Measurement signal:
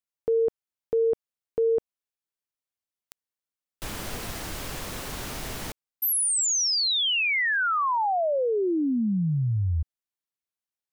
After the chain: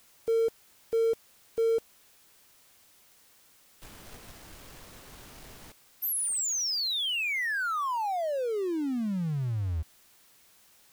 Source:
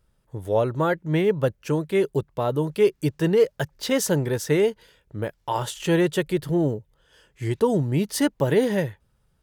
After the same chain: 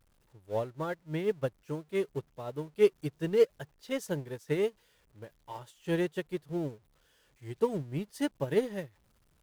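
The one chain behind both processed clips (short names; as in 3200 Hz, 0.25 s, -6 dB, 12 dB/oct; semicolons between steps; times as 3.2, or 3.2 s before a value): zero-crossing step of -31.5 dBFS; upward expander 2.5:1, over -31 dBFS; gain -4 dB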